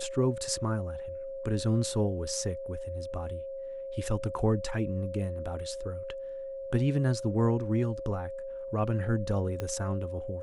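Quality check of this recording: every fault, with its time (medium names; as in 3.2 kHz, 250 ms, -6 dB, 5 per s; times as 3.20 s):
whine 540 Hz -36 dBFS
9.60 s: pop -20 dBFS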